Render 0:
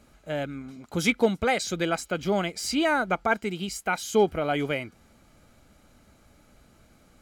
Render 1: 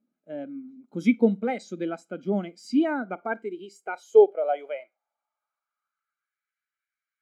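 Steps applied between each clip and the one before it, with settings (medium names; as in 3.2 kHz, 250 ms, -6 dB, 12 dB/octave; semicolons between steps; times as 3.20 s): Schroeder reverb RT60 0.31 s, combs from 32 ms, DRR 17 dB; high-pass sweep 230 Hz -> 1.7 kHz, 2.95–6.45 s; spectral contrast expander 1.5:1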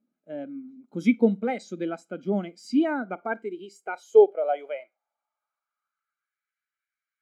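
no audible change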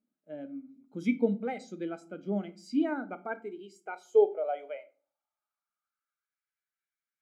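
simulated room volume 270 m³, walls furnished, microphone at 0.5 m; trim -7 dB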